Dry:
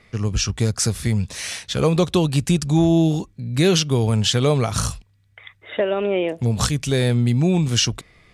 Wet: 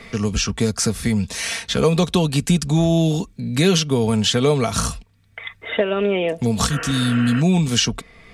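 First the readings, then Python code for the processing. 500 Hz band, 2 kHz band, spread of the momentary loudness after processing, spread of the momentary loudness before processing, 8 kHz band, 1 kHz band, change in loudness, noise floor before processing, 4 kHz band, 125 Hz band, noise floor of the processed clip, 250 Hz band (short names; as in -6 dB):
+1.0 dB, +3.5 dB, 8 LU, 8 LU, +1.0 dB, +2.0 dB, +0.5 dB, -57 dBFS, +1.5 dB, -1.0 dB, -54 dBFS, +1.5 dB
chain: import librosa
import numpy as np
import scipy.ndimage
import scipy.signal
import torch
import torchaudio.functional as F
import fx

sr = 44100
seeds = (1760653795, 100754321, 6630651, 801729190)

y = fx.spec_repair(x, sr, seeds[0], start_s=6.73, length_s=0.65, low_hz=280.0, high_hz=3100.0, source='before')
y = y + 0.48 * np.pad(y, (int(4.4 * sr / 1000.0), 0))[:len(y)]
y = fx.band_squash(y, sr, depth_pct=40)
y = F.gain(torch.from_numpy(y), 1.0).numpy()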